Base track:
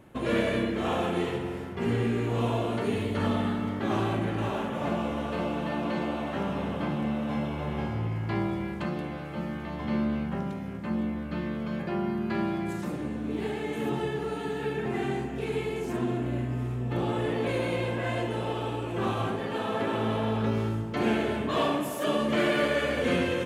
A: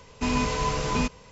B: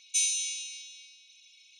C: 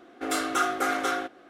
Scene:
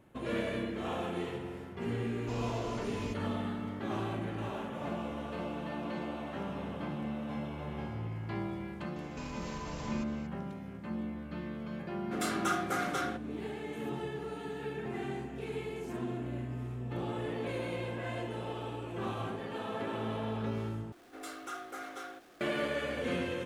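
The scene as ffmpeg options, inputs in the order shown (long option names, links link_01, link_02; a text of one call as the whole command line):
ffmpeg -i bed.wav -i cue0.wav -i cue1.wav -i cue2.wav -filter_complex "[1:a]asplit=2[link_01][link_02];[3:a]asplit=2[link_03][link_04];[0:a]volume=-8dB[link_05];[link_02]acompressor=threshold=-33dB:ratio=6:attack=3.2:release=140:knee=1:detection=peak[link_06];[link_04]aeval=exprs='val(0)+0.5*0.0141*sgn(val(0))':channel_layout=same[link_07];[link_05]asplit=2[link_08][link_09];[link_08]atrim=end=20.924[link_10];[link_07]atrim=end=1.49,asetpts=PTS-STARTPTS,volume=-17.5dB[link_11];[link_09]atrim=start=22.406[link_12];[link_01]atrim=end=1.31,asetpts=PTS-STARTPTS,volume=-17.5dB,afade=type=in:duration=0.004:curve=hsin,afade=type=out:start_time=1.306:duration=0.004:curve=hsin,adelay=2060[link_13];[link_06]atrim=end=1.31,asetpts=PTS-STARTPTS,volume=-6.5dB,afade=type=in:duration=0.004:curve=hsin,afade=type=out:start_time=1.306:duration=0.004:curve=hsin,adelay=8960[link_14];[link_03]atrim=end=1.49,asetpts=PTS-STARTPTS,volume=-7dB,afade=type=in:duration=0.004:curve=hsin,afade=type=out:start_time=1.486:duration=0.004:curve=hsin,adelay=11900[link_15];[link_10][link_11]acrossfade=duration=0.004:curve1=hsin:curve2=hsin[link_16];[link_16][link_12]acrossfade=duration=0.004:curve1=hsin:curve2=hsin[link_17];[link_17][link_13][link_14][link_15]amix=inputs=4:normalize=0" out.wav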